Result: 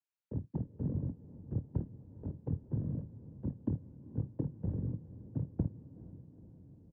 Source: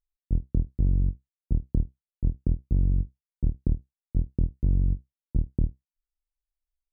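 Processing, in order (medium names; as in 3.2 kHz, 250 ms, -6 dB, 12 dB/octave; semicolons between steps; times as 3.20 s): harmony voices -7 st -12 dB; noise-vocoded speech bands 8; frequency shift -16 Hz; on a send: echo that smears into a reverb 454 ms, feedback 65%, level -15.5 dB; on the sum: trim -4 dB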